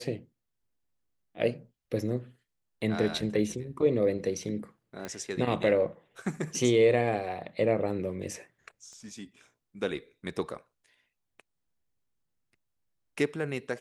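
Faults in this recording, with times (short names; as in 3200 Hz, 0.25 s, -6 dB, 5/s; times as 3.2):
5.05 pop -22 dBFS
8.93 pop -41 dBFS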